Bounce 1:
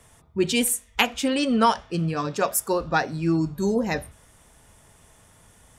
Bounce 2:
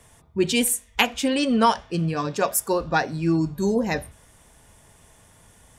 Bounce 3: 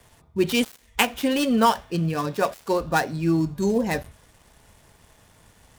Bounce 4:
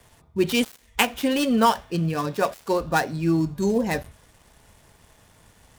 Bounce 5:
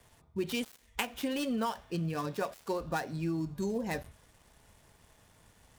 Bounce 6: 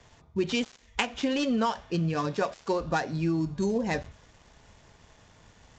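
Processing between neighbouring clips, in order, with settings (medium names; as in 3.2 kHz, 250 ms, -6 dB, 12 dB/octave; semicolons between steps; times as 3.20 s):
band-stop 1.3 kHz, Q 14; trim +1 dB
dead-time distortion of 0.064 ms
no audible change
compression 4:1, threshold -23 dBFS, peak gain reduction 9 dB; trim -7 dB
resampled via 16 kHz; trim +6 dB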